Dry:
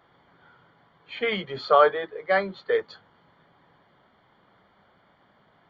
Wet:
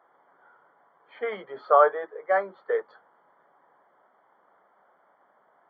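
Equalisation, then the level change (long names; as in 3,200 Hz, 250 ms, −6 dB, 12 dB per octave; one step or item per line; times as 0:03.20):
Savitzky-Golay smoothing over 41 samples
high-pass filter 680 Hz 12 dB per octave
tilt shelving filter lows +6.5 dB, about 1,300 Hz
0.0 dB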